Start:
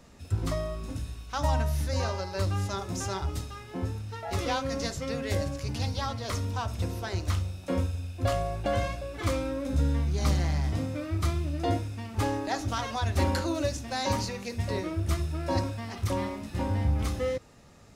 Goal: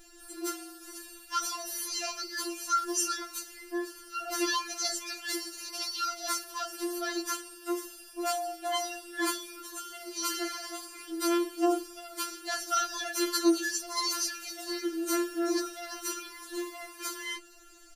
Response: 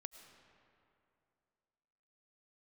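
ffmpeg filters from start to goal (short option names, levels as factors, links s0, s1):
-filter_complex "[0:a]highshelf=f=7000:g=12,aecho=1:1:6.5:0.62,acrossover=split=270|4000[s0][s1][s2];[s0]acompressor=threshold=0.00794:ratio=6[s3];[s3][s1][s2]amix=inputs=3:normalize=0,afftfilt=real='re*4*eq(mod(b,16),0)':imag='im*4*eq(mod(b,16),0)':win_size=2048:overlap=0.75,volume=1.33"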